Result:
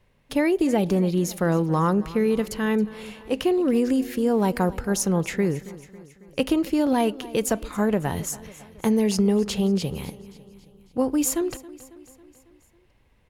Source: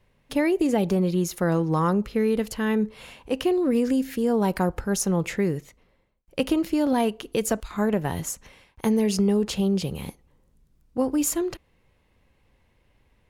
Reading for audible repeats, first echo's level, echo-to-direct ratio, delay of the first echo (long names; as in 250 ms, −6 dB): 4, −18.5 dB, −17.0 dB, 274 ms